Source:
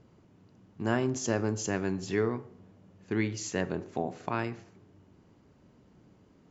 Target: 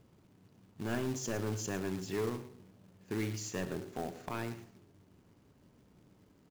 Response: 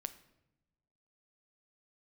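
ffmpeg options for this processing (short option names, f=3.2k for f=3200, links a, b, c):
-filter_complex "[0:a]asoftclip=type=tanh:threshold=-23dB,aecho=1:1:112:0.188,asplit=2[a][b];[1:a]atrim=start_sample=2205,lowshelf=f=120:g=6[c];[b][c]afir=irnorm=-1:irlink=0,volume=-4dB[d];[a][d]amix=inputs=2:normalize=0,acrusher=bits=3:mode=log:mix=0:aa=0.000001,volume=-8dB"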